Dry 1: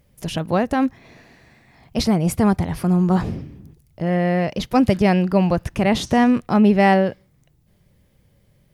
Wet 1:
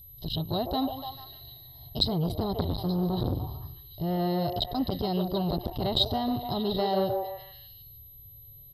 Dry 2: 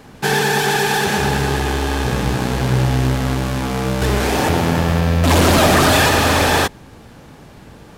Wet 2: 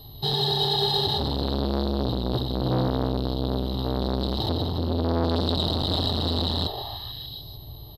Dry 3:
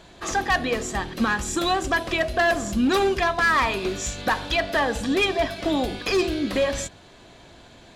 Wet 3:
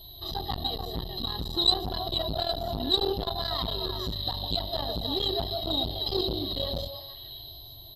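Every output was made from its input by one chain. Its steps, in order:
comb filter 1 ms, depth 97%
steady tone 12,000 Hz −30 dBFS
parametric band 6,500 Hz −14.5 dB 0.56 octaves
brickwall limiter −8 dBFS
echo through a band-pass that steps 148 ms, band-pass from 520 Hz, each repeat 0.7 octaves, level −2.5 dB
harmonic and percussive parts rebalanced percussive −4 dB
drawn EQ curve 120 Hz 0 dB, 210 Hz −20 dB, 480 Hz +3 dB, 900 Hz −15 dB, 2,400 Hz −28 dB, 3,800 Hz +13 dB, 6,800 Hz −18 dB
saturating transformer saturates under 770 Hz
normalise the peak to −9 dBFS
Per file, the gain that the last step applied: +1.5, +0.5, +0.5 decibels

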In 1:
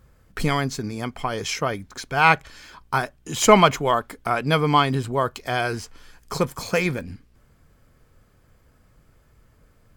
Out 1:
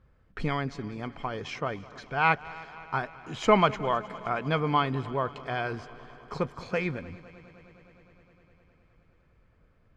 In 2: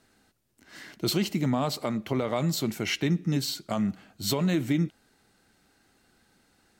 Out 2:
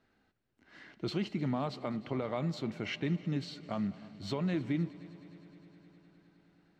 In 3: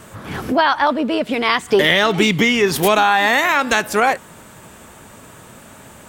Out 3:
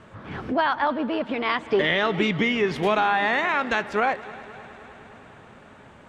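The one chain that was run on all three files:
low-pass filter 3,100 Hz 12 dB per octave
echo machine with several playback heads 103 ms, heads second and third, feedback 71%, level −21 dB
level −7 dB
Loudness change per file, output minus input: −7.5, −7.5, −7.5 LU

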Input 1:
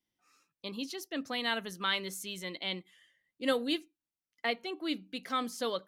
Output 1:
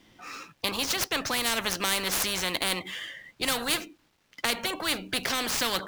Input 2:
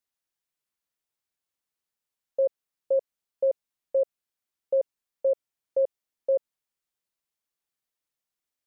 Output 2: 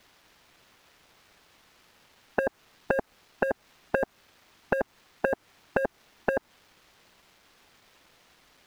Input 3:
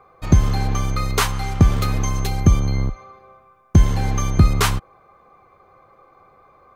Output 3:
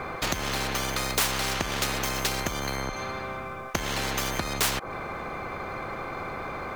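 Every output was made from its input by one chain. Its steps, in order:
running median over 5 samples
high-shelf EQ 6,900 Hz −7.5 dB
downward compressor, threshold −25 dBFS
dynamic equaliser 3,400 Hz, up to −5 dB, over −50 dBFS, Q 0.72
soft clipping −19 dBFS
every bin compressed towards the loudest bin 4 to 1
normalise the peak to −9 dBFS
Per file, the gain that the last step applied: +13.0, +12.0, +10.0 decibels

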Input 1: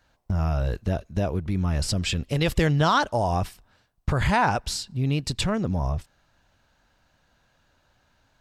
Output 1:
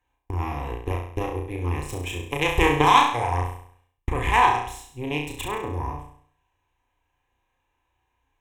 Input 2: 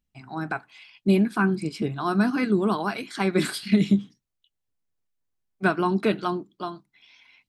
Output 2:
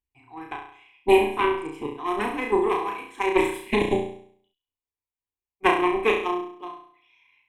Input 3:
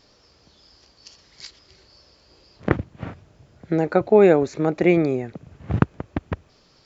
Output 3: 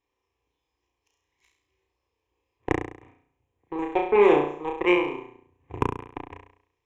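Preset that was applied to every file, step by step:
harmonic generator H 3 −38 dB, 4 −27 dB, 5 −44 dB, 7 −18 dB, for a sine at −1 dBFS
phaser with its sweep stopped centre 950 Hz, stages 8
hollow resonant body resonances 710/1,000/1,400/2,400 Hz, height 6 dB, ringing for 25 ms
on a send: flutter between parallel walls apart 5.8 metres, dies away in 0.58 s
on the sum: loudness normalisation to −24 LKFS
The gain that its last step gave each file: +10.0, +10.0, −3.0 decibels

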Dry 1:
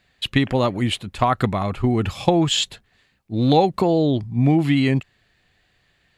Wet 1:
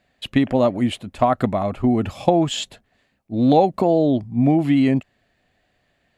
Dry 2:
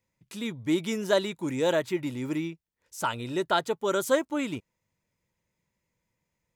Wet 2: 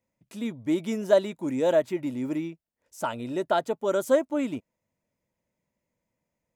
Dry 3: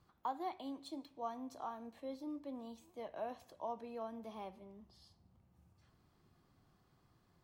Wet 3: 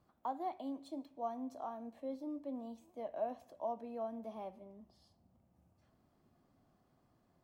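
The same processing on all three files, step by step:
graphic EQ with 15 bands 250 Hz +8 dB, 630 Hz +10 dB, 4,000 Hz −3 dB
level −4.5 dB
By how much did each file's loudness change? +1.0, +1.5, +2.5 LU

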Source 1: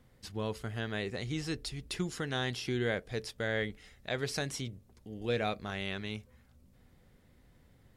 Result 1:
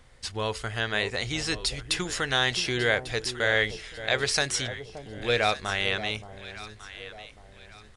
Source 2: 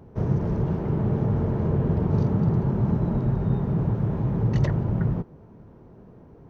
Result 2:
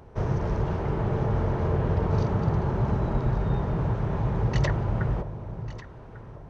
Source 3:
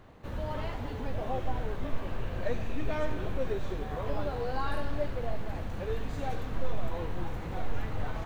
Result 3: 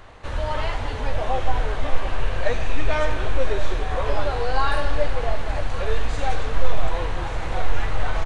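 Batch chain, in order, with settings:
parametric band 200 Hz −14 dB 2.4 octaves
delay that swaps between a low-pass and a high-pass 573 ms, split 870 Hz, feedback 58%, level −10 dB
downsampling to 22,050 Hz
loudness normalisation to −27 LKFS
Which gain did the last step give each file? +12.5, +7.0, +13.5 decibels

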